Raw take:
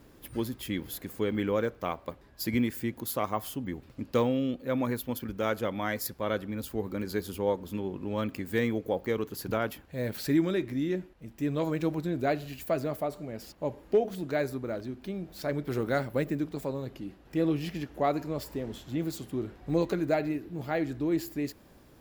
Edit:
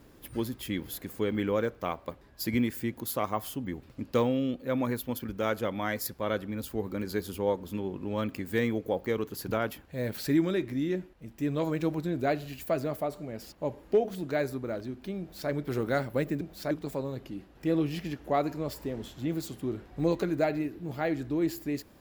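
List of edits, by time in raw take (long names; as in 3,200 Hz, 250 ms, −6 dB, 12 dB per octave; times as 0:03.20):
0:15.20–0:15.50: duplicate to 0:16.41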